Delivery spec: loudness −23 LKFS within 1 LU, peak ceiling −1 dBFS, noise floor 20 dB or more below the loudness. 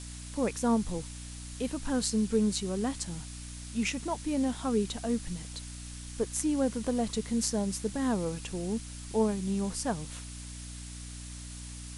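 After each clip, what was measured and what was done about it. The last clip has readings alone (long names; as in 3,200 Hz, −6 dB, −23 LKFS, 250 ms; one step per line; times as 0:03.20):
mains hum 60 Hz; hum harmonics up to 300 Hz; level of the hum −41 dBFS; background noise floor −43 dBFS; target noise floor −52 dBFS; integrated loudness −32.0 LKFS; sample peak −12.0 dBFS; target loudness −23.0 LKFS
→ hum removal 60 Hz, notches 5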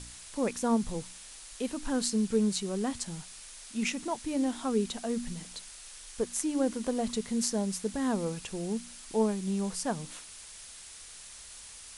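mains hum none found; background noise floor −48 dBFS; target noise floor −52 dBFS
→ broadband denoise 6 dB, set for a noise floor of −48 dBFS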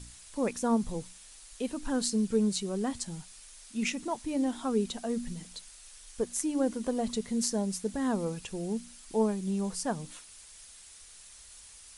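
background noise floor −52 dBFS; integrated loudness −32.0 LKFS; sample peak −12.5 dBFS; target loudness −23.0 LKFS
→ level +9 dB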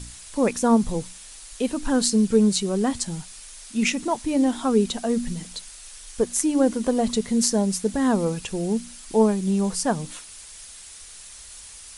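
integrated loudness −23.0 LKFS; sample peak −3.5 dBFS; background noise floor −43 dBFS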